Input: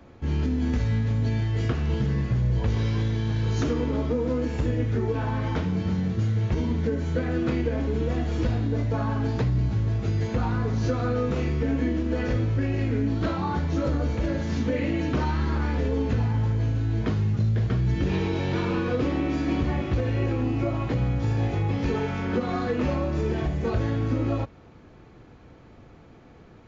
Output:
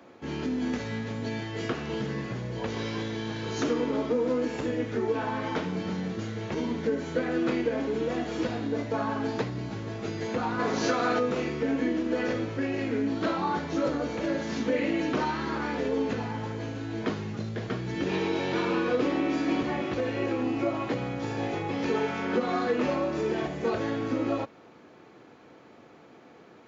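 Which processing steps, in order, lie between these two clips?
10.58–11.18 s: spectral peaks clipped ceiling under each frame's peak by 15 dB; high-pass 270 Hz 12 dB/octave; trim +1.5 dB

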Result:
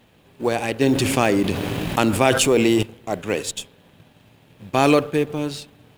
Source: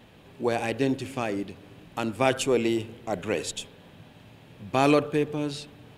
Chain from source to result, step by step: companding laws mixed up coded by A; treble shelf 7.3 kHz +4.5 dB; 0.81–2.83 s: level flattener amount 70%; trim +5 dB

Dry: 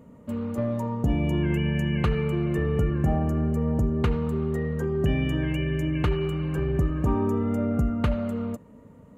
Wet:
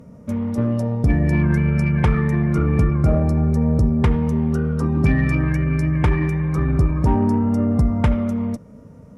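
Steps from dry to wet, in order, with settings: formant shift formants -4 st; Chebyshev shaper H 6 -28 dB, 8 -27 dB, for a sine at -12.5 dBFS; trim +7 dB

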